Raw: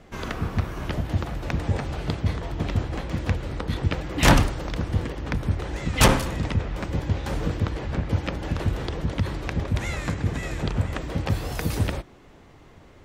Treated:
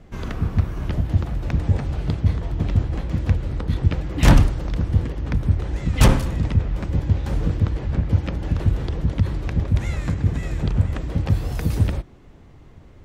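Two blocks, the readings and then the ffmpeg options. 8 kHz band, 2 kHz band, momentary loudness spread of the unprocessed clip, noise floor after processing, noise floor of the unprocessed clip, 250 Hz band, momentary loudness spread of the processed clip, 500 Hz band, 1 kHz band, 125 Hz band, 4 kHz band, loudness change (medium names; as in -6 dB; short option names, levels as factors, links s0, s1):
-4.0 dB, -4.0 dB, 10 LU, -45 dBFS, -50 dBFS, +2.5 dB, 8 LU, -1.5 dB, -3.0 dB, +5.5 dB, -4.0 dB, +4.0 dB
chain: -af "lowshelf=f=250:g=11.5,volume=0.631"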